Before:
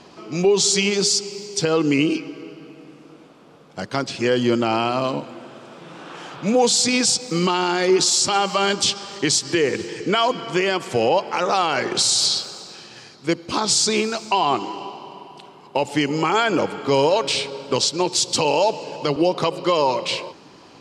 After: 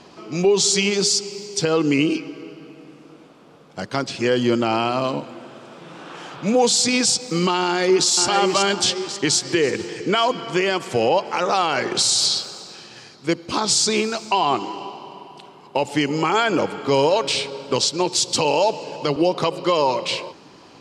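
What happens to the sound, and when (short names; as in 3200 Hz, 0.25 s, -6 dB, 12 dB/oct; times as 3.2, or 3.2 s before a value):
7.63–8.08 echo throw 0.54 s, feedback 45%, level -5 dB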